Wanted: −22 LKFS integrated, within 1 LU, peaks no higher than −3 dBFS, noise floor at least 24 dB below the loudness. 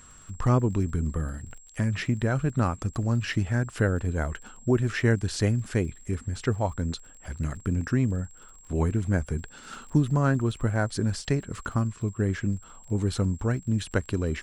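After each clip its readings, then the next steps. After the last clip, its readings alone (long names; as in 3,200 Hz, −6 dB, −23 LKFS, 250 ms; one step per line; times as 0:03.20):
crackle rate 39 per second; interfering tone 7,600 Hz; level of the tone −51 dBFS; integrated loudness −27.5 LKFS; sample peak −10.0 dBFS; target loudness −22.0 LKFS
→ click removal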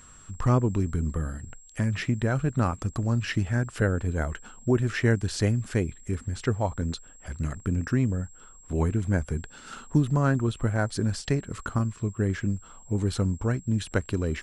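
crackle rate 0.069 per second; interfering tone 7,600 Hz; level of the tone −51 dBFS
→ notch filter 7,600 Hz, Q 30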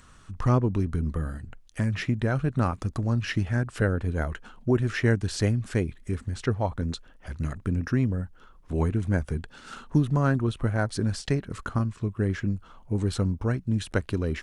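interfering tone none found; integrated loudness −27.5 LKFS; sample peak −10.0 dBFS; target loudness −22.0 LKFS
→ level +5.5 dB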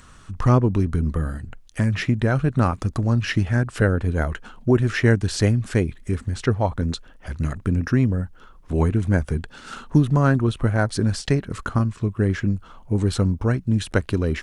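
integrated loudness −22.0 LKFS; sample peak −4.5 dBFS; background noise floor −48 dBFS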